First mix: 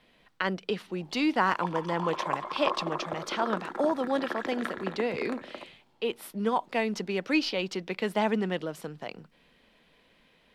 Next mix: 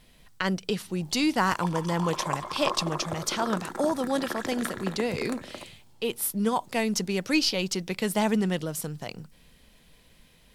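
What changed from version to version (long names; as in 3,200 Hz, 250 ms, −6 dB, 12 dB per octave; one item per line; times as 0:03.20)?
master: remove three-way crossover with the lows and the highs turned down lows −15 dB, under 210 Hz, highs −18 dB, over 3,800 Hz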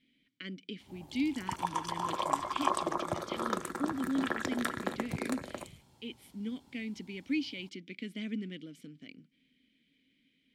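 speech: add formant filter i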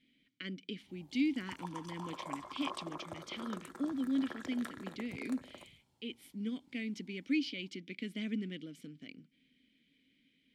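background −12.0 dB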